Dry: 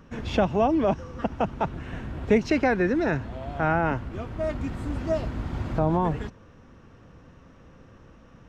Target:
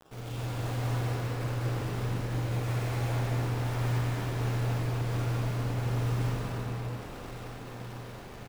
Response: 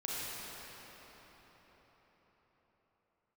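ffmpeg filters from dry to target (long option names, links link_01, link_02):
-filter_complex "[0:a]highpass=frequency=44:poles=1,lowshelf=frequency=240:width_type=q:width=1.5:gain=6,bandreject=frequency=2400:width=6,areverse,acompressor=threshold=-31dB:ratio=20,areverse,tremolo=f=150:d=0.4,aeval=exprs='val(0)+0.00282*sin(2*PI*530*n/s)':channel_layout=same,aresample=8000,aeval=exprs='abs(val(0))':channel_layout=same,aresample=44100,acrusher=bits=4:dc=4:mix=0:aa=0.000001,aeval=exprs='val(0)*sin(2*PI*120*n/s)':channel_layout=same,aecho=1:1:41|230:0.316|0.631[link_01];[1:a]atrim=start_sample=2205[link_02];[link_01][link_02]afir=irnorm=-1:irlink=0"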